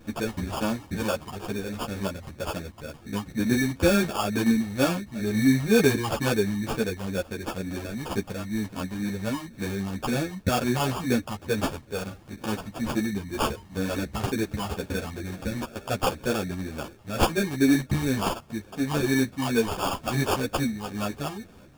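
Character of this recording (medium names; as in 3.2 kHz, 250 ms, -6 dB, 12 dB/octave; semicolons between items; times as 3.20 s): phasing stages 4, 2.1 Hz, lowest notch 470–3900 Hz; aliases and images of a low sample rate 2 kHz, jitter 0%; a shimmering, thickened sound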